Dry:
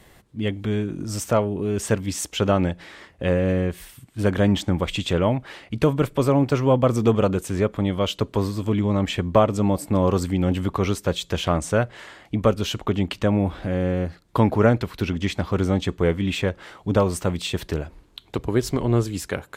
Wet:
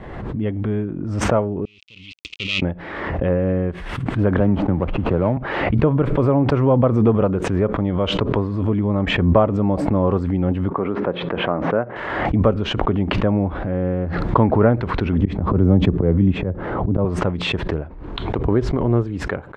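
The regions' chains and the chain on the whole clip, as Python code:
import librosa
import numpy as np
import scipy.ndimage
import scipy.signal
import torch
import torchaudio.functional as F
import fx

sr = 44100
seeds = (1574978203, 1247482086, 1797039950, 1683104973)

y = fx.chain(x, sr, fx.dead_time(dead_ms=0.25),
    fx.ellip_highpass(hz=2600.0, order=4, stop_db=40),
    fx.air_absorb(metres=100.0), at=(1.65, 2.62))
y = fx.chain(y, sr, fx.median_filter(points=25),
    fx.band_squash(depth_pct=40), at=(4.4, 5.37))
y = fx.chain(y, sr, fx.bandpass_edges(low_hz=210.0, high_hz=2100.0),
    fx.air_absorb(metres=140.0), at=(10.7, 11.96))
y = fx.chain(y, sr, fx.tilt_shelf(db=8.0, hz=670.0),
    fx.auto_swell(attack_ms=133.0),
    fx.band_squash(depth_pct=40), at=(15.21, 17.05))
y = scipy.signal.sosfilt(scipy.signal.butter(2, 1400.0, 'lowpass', fs=sr, output='sos'), y)
y = fx.pre_swell(y, sr, db_per_s=37.0)
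y = y * 10.0 ** (1.5 / 20.0)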